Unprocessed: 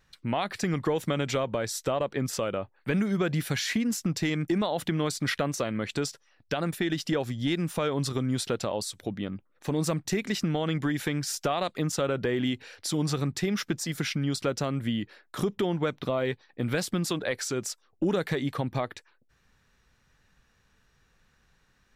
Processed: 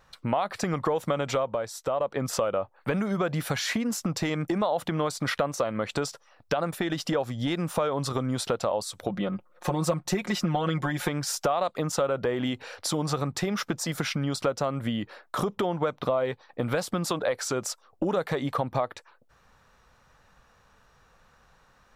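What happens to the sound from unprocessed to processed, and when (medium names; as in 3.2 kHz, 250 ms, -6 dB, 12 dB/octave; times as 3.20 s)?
1.29–2.24 s: dip -9 dB, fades 0.40 s
9.09–11.09 s: comb 5.6 ms, depth 80%
whole clip: high-order bell 810 Hz +9 dB; compression 2.5:1, threshold -30 dBFS; trim +3.5 dB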